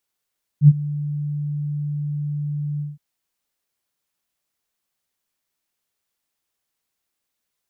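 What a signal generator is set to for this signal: ADSR sine 147 Hz, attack 72 ms, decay 40 ms, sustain -19 dB, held 2.19 s, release 178 ms -3.5 dBFS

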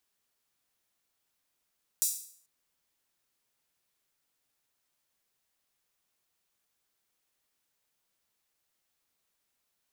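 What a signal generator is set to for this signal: open hi-hat length 0.44 s, high-pass 6.9 kHz, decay 0.55 s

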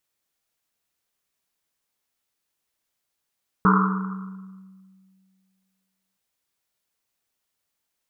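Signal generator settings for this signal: Risset drum length 2.52 s, pitch 190 Hz, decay 2.19 s, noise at 1.2 kHz, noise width 430 Hz, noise 45%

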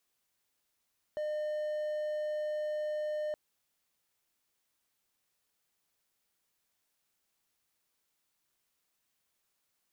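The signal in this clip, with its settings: tone triangle 606 Hz -30 dBFS 2.17 s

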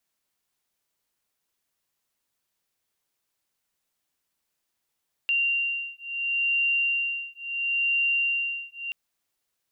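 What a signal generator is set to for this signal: beating tones 2.77 kHz, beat 0.73 Hz, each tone -26.5 dBFS 3.63 s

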